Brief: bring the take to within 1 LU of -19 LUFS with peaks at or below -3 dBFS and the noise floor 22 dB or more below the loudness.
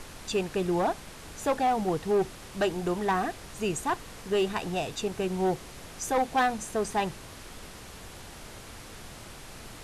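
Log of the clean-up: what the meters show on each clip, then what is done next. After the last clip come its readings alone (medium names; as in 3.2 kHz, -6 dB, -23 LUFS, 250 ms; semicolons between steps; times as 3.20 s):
clipped samples 1.5%; clipping level -20.0 dBFS; noise floor -46 dBFS; noise floor target -52 dBFS; loudness -29.5 LUFS; peak level -20.0 dBFS; loudness target -19.0 LUFS
-> clip repair -20 dBFS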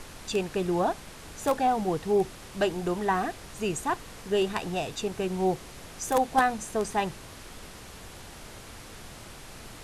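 clipped samples 0.0%; noise floor -46 dBFS; noise floor target -51 dBFS
-> noise print and reduce 6 dB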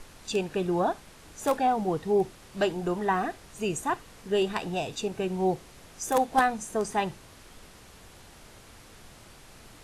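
noise floor -52 dBFS; loudness -29.0 LUFS; peak level -11.0 dBFS; loudness target -19.0 LUFS
-> trim +10 dB; peak limiter -3 dBFS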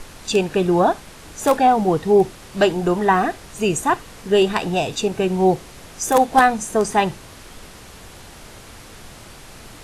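loudness -19.0 LUFS; peak level -3.0 dBFS; noise floor -42 dBFS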